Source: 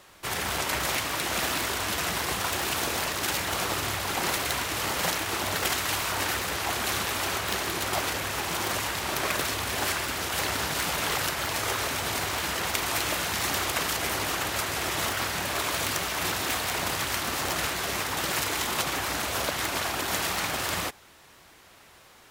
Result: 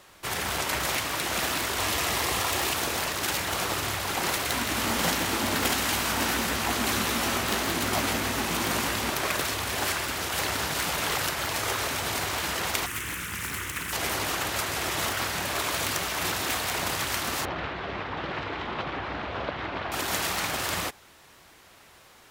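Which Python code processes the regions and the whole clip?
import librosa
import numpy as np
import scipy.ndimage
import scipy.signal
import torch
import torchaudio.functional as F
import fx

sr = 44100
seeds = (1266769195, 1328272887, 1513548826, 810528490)

y = fx.chain(x, sr, fx.peak_eq(hz=180.0, db=-7.0, octaves=0.41),
    fx.notch(hz=1500.0, q=11.0),
    fx.env_flatten(amount_pct=100), at=(1.78, 2.74))
y = fx.chain(y, sr, fx.peak_eq(hz=240.0, db=12.5, octaves=0.46),
    fx.doubler(ms=18.0, db=-10),
    fx.echo_feedback(ms=167, feedback_pct=31, wet_db=-7), at=(4.5, 9.1))
y = fx.chain(y, sr, fx.peak_eq(hz=650.0, db=-8.0, octaves=1.8),
    fx.fixed_phaser(hz=1800.0, stages=4),
    fx.doppler_dist(depth_ms=0.66), at=(12.86, 13.93))
y = fx.chain(y, sr, fx.lowpass(hz=3800.0, slope=24),
    fx.high_shelf(hz=2200.0, db=-10.0), at=(17.45, 19.92))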